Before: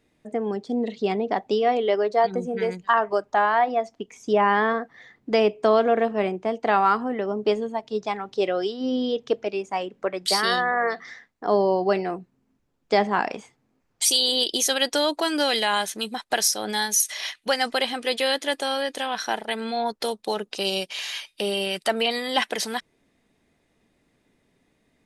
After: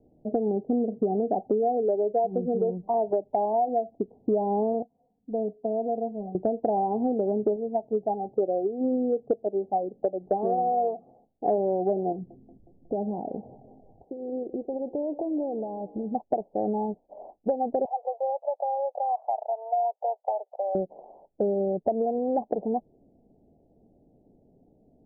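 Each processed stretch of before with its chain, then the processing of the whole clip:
4.82–6.35 passive tone stack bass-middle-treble 5-5-5 + comb 4.2 ms, depth 86%
7.56–11.58 bell 2300 Hz +12 dB 2.8 oct + notch 970 Hz, Q 6 + upward expander, over -24 dBFS
12.12–16.15 low shelf 460 Hz +9.5 dB + compressor 2.5:1, threshold -41 dBFS + band-limited delay 0.182 s, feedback 60%, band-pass 580 Hz, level -17.5 dB
17.85–20.75 steep high-pass 620 Hz 48 dB/oct + three-band squash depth 70%
whole clip: steep low-pass 790 Hz 72 dB/oct; compressor 6:1, threshold -30 dBFS; gain +7.5 dB

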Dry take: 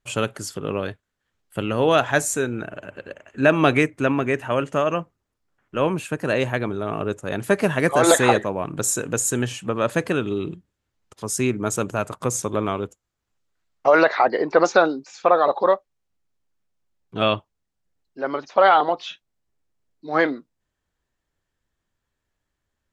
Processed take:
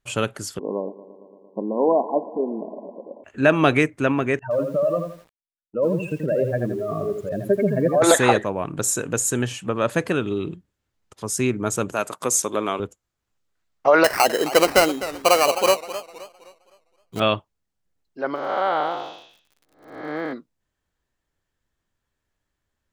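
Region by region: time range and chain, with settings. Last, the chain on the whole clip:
0.59–3.24 brick-wall FIR band-pass 180–1100 Hz + multi-head echo 0.114 s, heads first and second, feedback 70%, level -21 dB
4.39–8.02 spectral contrast raised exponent 2.8 + expander -35 dBFS + lo-fi delay 83 ms, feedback 35%, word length 8-bit, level -6 dB
11.92–12.8 HPF 240 Hz + high shelf 3400 Hz +8 dB
14.04–17.2 sample-rate reducer 3500 Hz + warbling echo 0.259 s, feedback 37%, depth 124 cents, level -13.5 dB
18.34–20.32 time blur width 0.36 s + crackle 93/s -45 dBFS
whole clip: dry

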